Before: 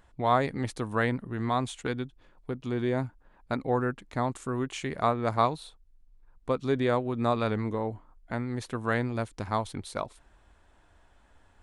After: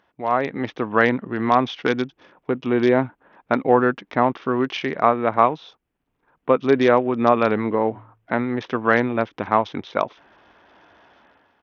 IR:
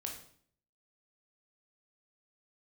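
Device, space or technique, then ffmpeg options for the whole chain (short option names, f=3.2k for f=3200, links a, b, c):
Bluetooth headset: -filter_complex "[0:a]asplit=3[a][b][c];[a]afade=t=out:st=7.93:d=0.02[d];[b]bandreject=f=55.25:t=h:w=4,bandreject=f=110.5:t=h:w=4,afade=t=in:st=7.93:d=0.02,afade=t=out:st=8.49:d=0.02[e];[c]afade=t=in:st=8.49:d=0.02[f];[d][e][f]amix=inputs=3:normalize=0,highpass=220,dynaudnorm=f=100:g=9:m=12dB,aresample=8000,aresample=44100,volume=1dB" -ar 48000 -c:a sbc -b:a 64k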